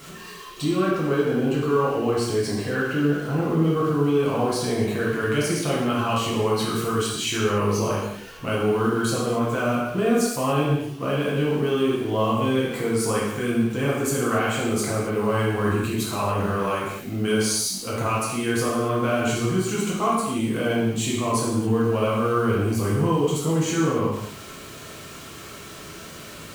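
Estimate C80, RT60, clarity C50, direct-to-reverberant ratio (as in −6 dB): 3.0 dB, non-exponential decay, 0.0 dB, −6.5 dB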